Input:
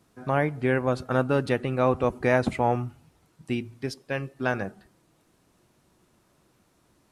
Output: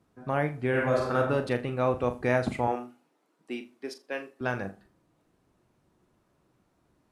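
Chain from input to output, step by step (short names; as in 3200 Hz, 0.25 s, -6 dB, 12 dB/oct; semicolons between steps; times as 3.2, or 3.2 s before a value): 2.67–4.41 HPF 270 Hz 24 dB/oct; flutter echo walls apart 7 m, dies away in 0.25 s; 0.69–1.17 reverb throw, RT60 0.82 s, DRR -2 dB; mismatched tape noise reduction decoder only; gain -4 dB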